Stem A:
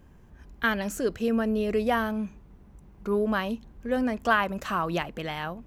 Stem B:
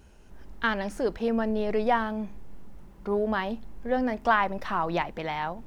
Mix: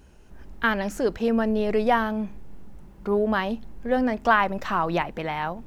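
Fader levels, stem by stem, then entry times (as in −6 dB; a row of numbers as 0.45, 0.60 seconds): −6.5, +0.5 decibels; 0.00, 0.00 seconds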